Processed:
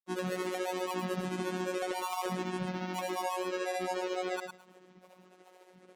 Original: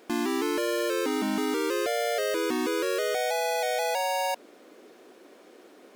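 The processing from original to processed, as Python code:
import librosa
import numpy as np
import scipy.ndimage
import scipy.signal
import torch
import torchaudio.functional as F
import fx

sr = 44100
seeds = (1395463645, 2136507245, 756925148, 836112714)

p1 = scipy.signal.sosfilt(scipy.signal.butter(6, 11000.0, 'lowpass', fs=sr, output='sos'), x)
p2 = fx.granulator(p1, sr, seeds[0], grain_ms=100.0, per_s=14.0, spray_ms=100.0, spread_st=12)
p3 = 10.0 ** (-30.0 / 20.0) * np.tanh(p2 / 10.0 ** (-30.0 / 20.0))
p4 = p2 + (p3 * librosa.db_to_amplitude(-8.5))
p5 = fx.peak_eq(p4, sr, hz=4700.0, db=-3.0, octaves=0.77)
p6 = fx.hum_notches(p5, sr, base_hz=50, count=4)
p7 = p6 + fx.echo_thinned(p6, sr, ms=107, feedback_pct=16, hz=330.0, wet_db=-5.5, dry=0)
p8 = fx.robotise(p7, sr, hz=183.0)
y = p8 * librosa.db_to_amplitude(-4.5)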